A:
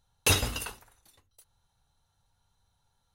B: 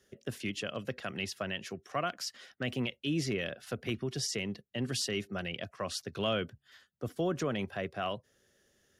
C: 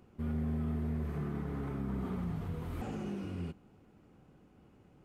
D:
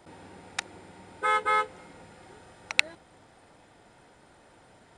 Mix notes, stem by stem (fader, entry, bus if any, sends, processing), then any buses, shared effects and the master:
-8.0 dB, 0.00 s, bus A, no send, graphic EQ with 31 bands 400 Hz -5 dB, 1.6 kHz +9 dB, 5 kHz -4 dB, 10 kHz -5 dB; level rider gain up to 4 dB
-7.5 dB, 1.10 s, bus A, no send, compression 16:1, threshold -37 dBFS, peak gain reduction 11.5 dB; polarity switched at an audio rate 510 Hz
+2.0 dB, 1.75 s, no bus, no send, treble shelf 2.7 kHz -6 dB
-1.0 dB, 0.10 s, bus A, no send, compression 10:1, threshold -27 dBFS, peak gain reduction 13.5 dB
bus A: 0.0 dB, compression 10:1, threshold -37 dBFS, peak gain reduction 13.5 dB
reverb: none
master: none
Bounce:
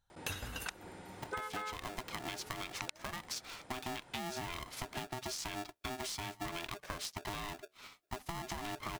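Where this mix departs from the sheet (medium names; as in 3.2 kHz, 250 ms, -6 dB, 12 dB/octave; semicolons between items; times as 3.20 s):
stem B -7.5 dB -> +4.5 dB; stem C: muted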